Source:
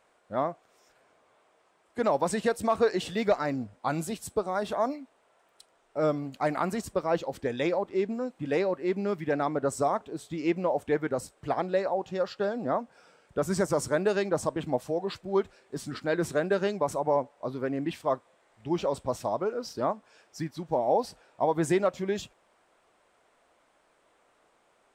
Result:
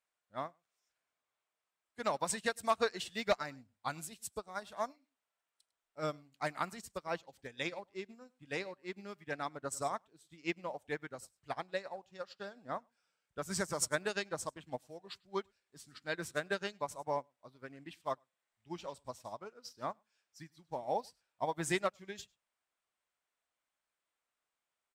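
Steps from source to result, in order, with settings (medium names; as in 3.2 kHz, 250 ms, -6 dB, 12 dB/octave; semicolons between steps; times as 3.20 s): amplifier tone stack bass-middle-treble 5-5-5; delay 101 ms -18 dB; upward expansion 2.5:1, over -54 dBFS; trim +13 dB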